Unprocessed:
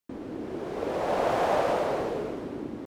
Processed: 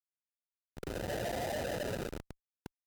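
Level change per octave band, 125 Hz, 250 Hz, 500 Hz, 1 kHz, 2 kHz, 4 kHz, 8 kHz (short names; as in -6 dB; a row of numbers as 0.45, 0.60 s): -2.5, -10.5, -11.5, -15.0, -7.0, -3.5, +0.5 dB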